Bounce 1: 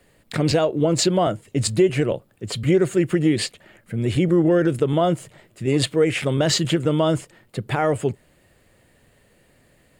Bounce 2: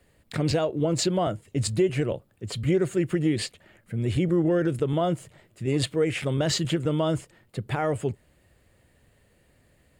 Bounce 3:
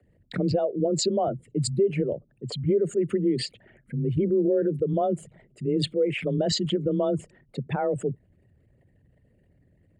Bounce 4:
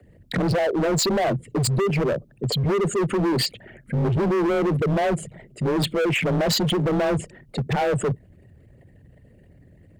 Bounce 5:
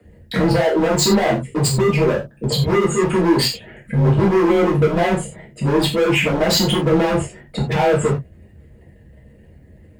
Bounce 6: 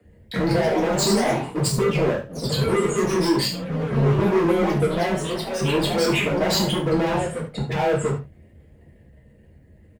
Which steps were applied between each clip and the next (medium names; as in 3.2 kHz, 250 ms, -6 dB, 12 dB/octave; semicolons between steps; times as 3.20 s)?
peaking EQ 65 Hz +8 dB 1.4 oct; trim -6 dB
resonances exaggerated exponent 2; frequency shift +24 Hz
in parallel at +2 dB: peak limiter -20.5 dBFS, peak gain reduction 8 dB; on the sum: overload inside the chain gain 23 dB; trim +3.5 dB
gated-style reverb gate 120 ms falling, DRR -5 dB
ever faster or slower copies 190 ms, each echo +2 st, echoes 3, each echo -6 dB; delay 71 ms -13 dB; trim -5.5 dB